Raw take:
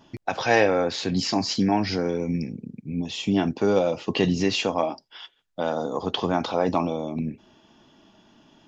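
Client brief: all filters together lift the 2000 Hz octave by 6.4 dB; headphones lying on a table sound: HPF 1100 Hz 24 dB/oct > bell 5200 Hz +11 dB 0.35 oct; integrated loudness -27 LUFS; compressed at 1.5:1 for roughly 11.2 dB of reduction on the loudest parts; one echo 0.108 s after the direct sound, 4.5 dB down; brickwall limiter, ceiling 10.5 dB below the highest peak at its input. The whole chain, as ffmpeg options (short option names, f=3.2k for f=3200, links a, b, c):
-af "equalizer=f=2k:t=o:g=8,acompressor=threshold=-43dB:ratio=1.5,alimiter=limit=-23.5dB:level=0:latency=1,highpass=f=1.1k:w=0.5412,highpass=f=1.1k:w=1.3066,equalizer=f=5.2k:t=o:w=0.35:g=11,aecho=1:1:108:0.596,volume=6.5dB"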